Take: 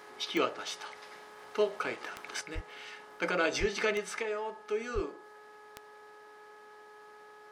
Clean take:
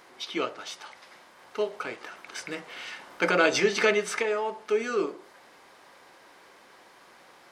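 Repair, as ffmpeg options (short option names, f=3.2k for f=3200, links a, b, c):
-filter_complex "[0:a]adeclick=t=4,bandreject=f=422:t=h:w=4,bandreject=f=844:t=h:w=4,bandreject=f=1.266k:t=h:w=4,bandreject=f=1.688k:t=h:w=4,asplit=3[a][b][c];[a]afade=t=out:st=2.54:d=0.02[d];[b]highpass=f=140:w=0.5412,highpass=f=140:w=1.3066,afade=t=in:st=2.54:d=0.02,afade=t=out:st=2.66:d=0.02[e];[c]afade=t=in:st=2.66:d=0.02[f];[d][e][f]amix=inputs=3:normalize=0,asplit=3[g][h][i];[g]afade=t=out:st=3.59:d=0.02[j];[h]highpass=f=140:w=0.5412,highpass=f=140:w=1.3066,afade=t=in:st=3.59:d=0.02,afade=t=out:st=3.71:d=0.02[k];[i]afade=t=in:st=3.71:d=0.02[l];[j][k][l]amix=inputs=3:normalize=0,asplit=3[m][n][o];[m]afade=t=out:st=4.94:d=0.02[p];[n]highpass=f=140:w=0.5412,highpass=f=140:w=1.3066,afade=t=in:st=4.94:d=0.02,afade=t=out:st=5.06:d=0.02[q];[o]afade=t=in:st=5.06:d=0.02[r];[p][q][r]amix=inputs=3:normalize=0,asetnsamples=n=441:p=0,asendcmd='2.41 volume volume 7.5dB',volume=0dB"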